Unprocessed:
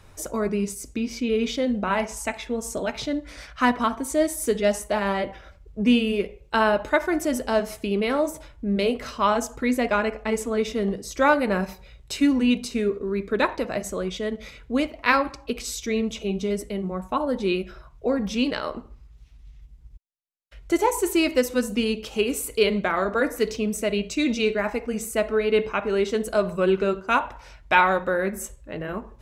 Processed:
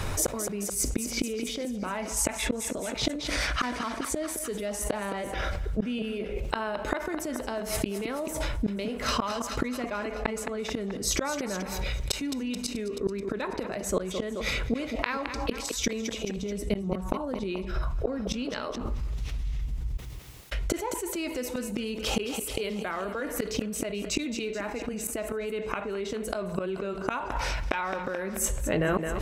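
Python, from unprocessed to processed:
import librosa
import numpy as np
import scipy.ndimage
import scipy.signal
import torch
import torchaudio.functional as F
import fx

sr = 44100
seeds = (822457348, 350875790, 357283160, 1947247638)

y = fx.gate_flip(x, sr, shuts_db=-21.0, range_db=-32)
y = fx.low_shelf(y, sr, hz=150.0, db=9.0, at=(16.37, 18.43))
y = fx.echo_thinned(y, sr, ms=216, feedback_pct=57, hz=190.0, wet_db=-19.0)
y = fx.env_flatten(y, sr, amount_pct=70)
y = y * 10.0 ** (2.5 / 20.0)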